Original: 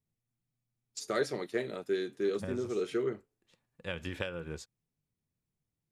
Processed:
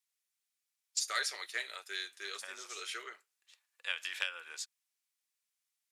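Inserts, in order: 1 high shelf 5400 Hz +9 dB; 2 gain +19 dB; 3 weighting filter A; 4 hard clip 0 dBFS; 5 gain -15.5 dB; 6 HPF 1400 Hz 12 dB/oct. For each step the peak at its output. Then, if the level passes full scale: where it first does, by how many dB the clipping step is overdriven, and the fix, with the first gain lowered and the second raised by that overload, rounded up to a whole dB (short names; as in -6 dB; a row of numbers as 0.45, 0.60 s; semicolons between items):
-16.0, +3.0, +4.0, 0.0, -15.5, -14.5 dBFS; step 2, 4.0 dB; step 2 +15 dB, step 5 -11.5 dB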